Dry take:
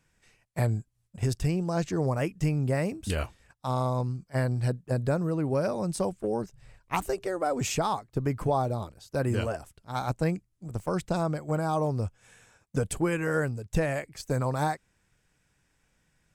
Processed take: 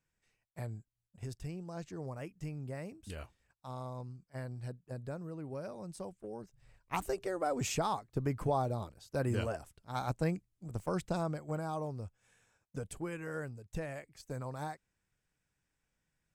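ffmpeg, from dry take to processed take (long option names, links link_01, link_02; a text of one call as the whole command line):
ffmpeg -i in.wav -af "volume=-5.5dB,afade=type=in:start_time=6.4:duration=0.71:silence=0.334965,afade=type=out:start_time=10.97:duration=1.04:silence=0.421697" out.wav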